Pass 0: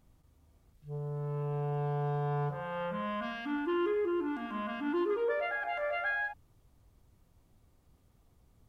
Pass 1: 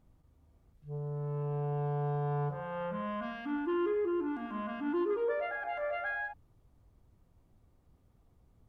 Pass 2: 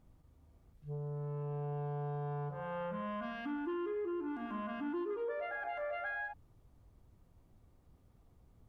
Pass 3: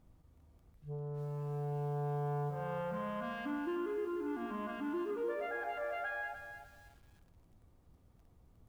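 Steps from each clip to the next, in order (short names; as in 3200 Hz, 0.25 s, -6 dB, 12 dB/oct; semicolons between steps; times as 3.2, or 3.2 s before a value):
high shelf 2100 Hz -9 dB
compressor 3:1, threshold -39 dBFS, peak gain reduction 8.5 dB; gain +1 dB
reverb, pre-delay 3 ms, DRR 17.5 dB; lo-fi delay 0.303 s, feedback 35%, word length 10-bit, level -8.5 dB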